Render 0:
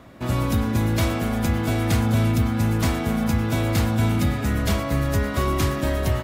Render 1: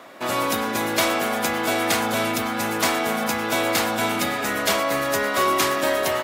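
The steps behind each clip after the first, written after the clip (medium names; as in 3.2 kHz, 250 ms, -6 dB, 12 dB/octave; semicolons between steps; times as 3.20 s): high-pass 490 Hz 12 dB/octave; trim +7.5 dB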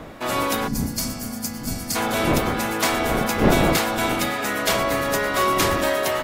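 wind noise 480 Hz -27 dBFS; time-frequency box 0.68–1.96 s, 290–4200 Hz -16 dB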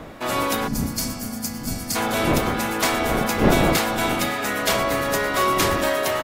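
delay 493 ms -19 dB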